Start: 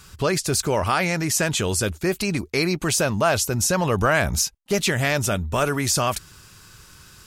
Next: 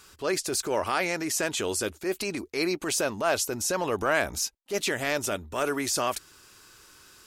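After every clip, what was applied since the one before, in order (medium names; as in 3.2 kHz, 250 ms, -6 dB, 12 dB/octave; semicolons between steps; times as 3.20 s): resonant low shelf 220 Hz -10 dB, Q 1.5; transient shaper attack -7 dB, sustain -1 dB; trim -4.5 dB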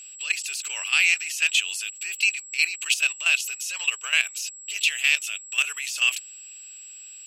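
whistle 7.7 kHz -35 dBFS; resonant high-pass 2.7 kHz, resonance Q 8.6; level held to a coarse grid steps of 12 dB; trim +5 dB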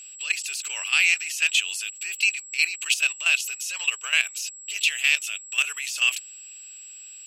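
no audible change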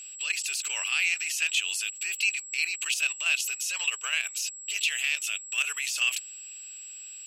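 peak limiter -15.5 dBFS, peak gain reduction 9.5 dB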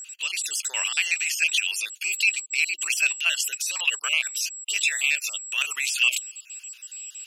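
random holes in the spectrogram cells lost 32%; trim +5.5 dB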